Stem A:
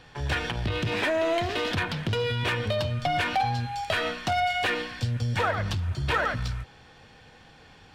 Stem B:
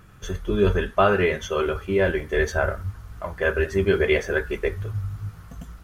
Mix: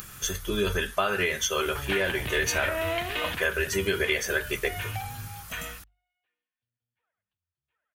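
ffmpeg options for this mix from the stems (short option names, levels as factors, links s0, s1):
-filter_complex "[0:a]lowpass=f=2900:w=0.5412,lowpass=f=2900:w=1.3066,adelay=1600,volume=0.447,afade=t=out:st=3.23:d=0.21:silence=0.334965[s0];[1:a]acompressor=mode=upward:threshold=0.0141:ratio=2.5,volume=0.531,asplit=2[s1][s2];[s2]apad=whole_len=420967[s3];[s0][s3]sidechaingate=range=0.00398:threshold=0.00562:ratio=16:detection=peak[s4];[s4][s1]amix=inputs=2:normalize=0,crystalizer=i=9.5:c=0,bandreject=f=50:t=h:w=6,bandreject=f=100:t=h:w=6,acompressor=threshold=0.0794:ratio=6"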